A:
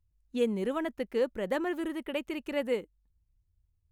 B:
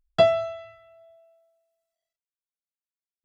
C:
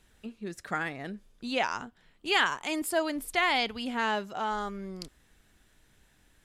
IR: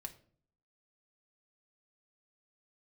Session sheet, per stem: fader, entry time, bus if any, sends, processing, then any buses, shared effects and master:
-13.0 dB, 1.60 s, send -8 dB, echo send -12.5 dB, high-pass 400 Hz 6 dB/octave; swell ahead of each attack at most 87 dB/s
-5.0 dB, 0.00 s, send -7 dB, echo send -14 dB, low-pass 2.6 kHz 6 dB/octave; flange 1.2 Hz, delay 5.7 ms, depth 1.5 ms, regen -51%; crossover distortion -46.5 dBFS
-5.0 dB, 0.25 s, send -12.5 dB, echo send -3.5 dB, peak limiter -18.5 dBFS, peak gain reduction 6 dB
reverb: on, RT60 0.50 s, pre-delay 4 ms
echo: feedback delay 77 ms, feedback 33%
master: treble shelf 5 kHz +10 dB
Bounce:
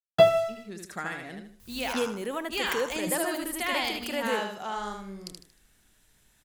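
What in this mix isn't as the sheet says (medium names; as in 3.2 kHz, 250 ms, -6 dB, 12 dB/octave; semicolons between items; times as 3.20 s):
stem A -13.0 dB -> -1.0 dB; stem B -5.0 dB -> +2.0 dB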